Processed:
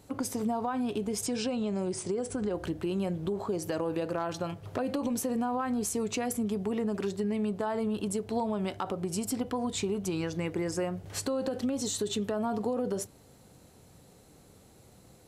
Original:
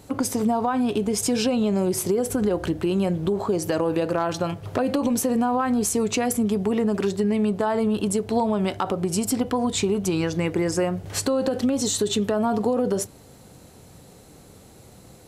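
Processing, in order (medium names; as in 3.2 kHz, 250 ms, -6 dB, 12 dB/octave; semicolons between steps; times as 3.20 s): 1.26–2.55 s: Chebyshev low-pass 9.9 kHz, order 10; trim -8.5 dB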